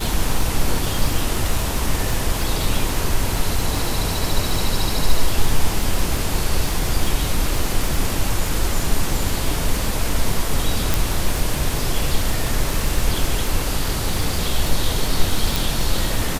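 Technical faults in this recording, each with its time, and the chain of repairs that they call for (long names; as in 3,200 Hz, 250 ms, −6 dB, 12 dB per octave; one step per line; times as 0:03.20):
surface crackle 48 per second −21 dBFS
0:10.94: click
0:15.56: click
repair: click removal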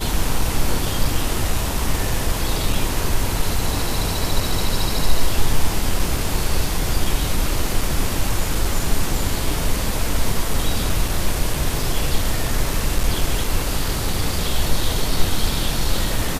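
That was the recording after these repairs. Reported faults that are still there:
none of them is left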